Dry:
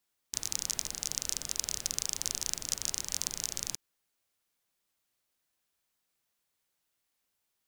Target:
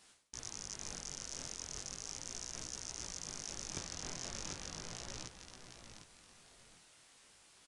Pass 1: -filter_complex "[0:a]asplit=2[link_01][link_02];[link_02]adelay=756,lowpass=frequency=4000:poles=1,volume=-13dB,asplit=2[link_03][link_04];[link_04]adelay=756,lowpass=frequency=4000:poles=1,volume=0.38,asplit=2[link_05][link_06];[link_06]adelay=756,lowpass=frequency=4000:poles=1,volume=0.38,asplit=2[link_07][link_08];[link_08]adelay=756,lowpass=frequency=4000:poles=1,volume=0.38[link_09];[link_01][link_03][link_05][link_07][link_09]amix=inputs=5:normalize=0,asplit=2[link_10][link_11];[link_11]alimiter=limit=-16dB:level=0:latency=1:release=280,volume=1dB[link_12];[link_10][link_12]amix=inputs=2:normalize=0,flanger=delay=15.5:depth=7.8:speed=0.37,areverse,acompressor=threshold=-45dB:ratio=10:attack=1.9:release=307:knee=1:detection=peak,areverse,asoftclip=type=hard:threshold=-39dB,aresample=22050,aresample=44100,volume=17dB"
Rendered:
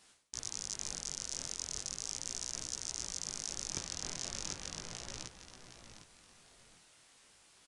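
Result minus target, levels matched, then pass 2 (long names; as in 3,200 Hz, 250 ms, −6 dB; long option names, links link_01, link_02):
hard clipping: distortion −9 dB
-filter_complex "[0:a]asplit=2[link_01][link_02];[link_02]adelay=756,lowpass=frequency=4000:poles=1,volume=-13dB,asplit=2[link_03][link_04];[link_04]adelay=756,lowpass=frequency=4000:poles=1,volume=0.38,asplit=2[link_05][link_06];[link_06]adelay=756,lowpass=frequency=4000:poles=1,volume=0.38,asplit=2[link_07][link_08];[link_08]adelay=756,lowpass=frequency=4000:poles=1,volume=0.38[link_09];[link_01][link_03][link_05][link_07][link_09]amix=inputs=5:normalize=0,asplit=2[link_10][link_11];[link_11]alimiter=limit=-16dB:level=0:latency=1:release=280,volume=1dB[link_12];[link_10][link_12]amix=inputs=2:normalize=0,flanger=delay=15.5:depth=7.8:speed=0.37,areverse,acompressor=threshold=-45dB:ratio=10:attack=1.9:release=307:knee=1:detection=peak,areverse,asoftclip=type=hard:threshold=-47dB,aresample=22050,aresample=44100,volume=17dB"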